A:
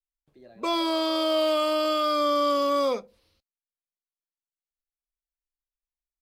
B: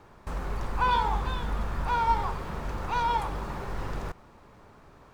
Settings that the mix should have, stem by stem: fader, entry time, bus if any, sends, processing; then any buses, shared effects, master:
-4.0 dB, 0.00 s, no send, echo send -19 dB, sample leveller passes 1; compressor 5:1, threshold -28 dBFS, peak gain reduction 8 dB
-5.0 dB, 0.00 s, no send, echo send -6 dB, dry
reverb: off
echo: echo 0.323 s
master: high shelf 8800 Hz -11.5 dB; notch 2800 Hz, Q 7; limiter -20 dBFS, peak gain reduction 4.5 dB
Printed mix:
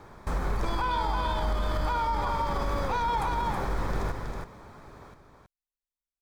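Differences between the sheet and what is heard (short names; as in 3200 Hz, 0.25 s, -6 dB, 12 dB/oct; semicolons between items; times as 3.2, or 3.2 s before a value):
stem B -5.0 dB -> +4.5 dB; master: missing high shelf 8800 Hz -11.5 dB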